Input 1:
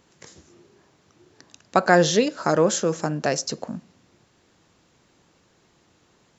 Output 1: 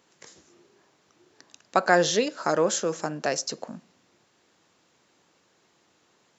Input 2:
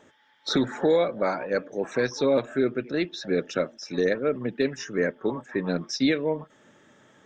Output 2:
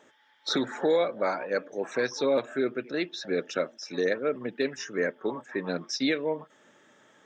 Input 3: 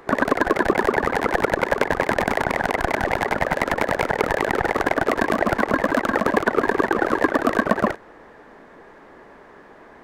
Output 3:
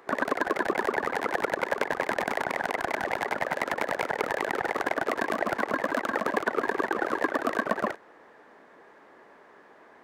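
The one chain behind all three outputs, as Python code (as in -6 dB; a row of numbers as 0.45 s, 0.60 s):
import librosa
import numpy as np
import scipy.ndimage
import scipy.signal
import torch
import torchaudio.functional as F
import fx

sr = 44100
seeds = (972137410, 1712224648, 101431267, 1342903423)

y = fx.highpass(x, sr, hz=350.0, slope=6)
y = y * 10.0 ** (-30 / 20.0) / np.sqrt(np.mean(np.square(y)))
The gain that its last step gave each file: -2.0 dB, -1.0 dB, -6.5 dB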